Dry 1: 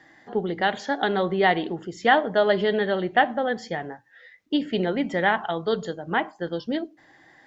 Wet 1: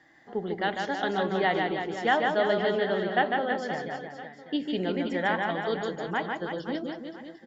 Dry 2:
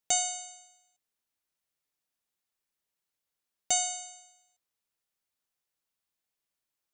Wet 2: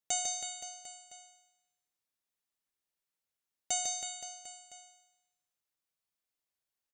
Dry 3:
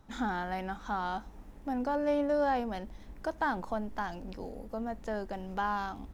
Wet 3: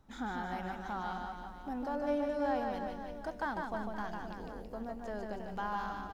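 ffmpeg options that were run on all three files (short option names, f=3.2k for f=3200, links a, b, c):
-af "aecho=1:1:150|322.5|520.9|749|1011:0.631|0.398|0.251|0.158|0.1,volume=-6dB"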